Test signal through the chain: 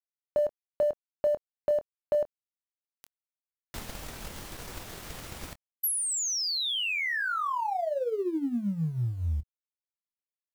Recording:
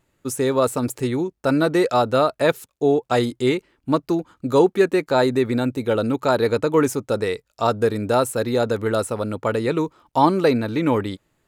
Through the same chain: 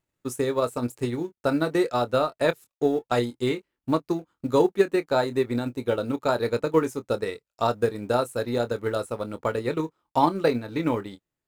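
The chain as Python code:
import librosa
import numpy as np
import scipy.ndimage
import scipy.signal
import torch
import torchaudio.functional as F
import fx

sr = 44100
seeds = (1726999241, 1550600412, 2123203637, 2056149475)

y = fx.law_mismatch(x, sr, coded='A')
y = fx.doubler(y, sr, ms=25.0, db=-9)
y = fx.transient(y, sr, attack_db=5, sustain_db=-5)
y = y * 10.0 ** (-7.0 / 20.0)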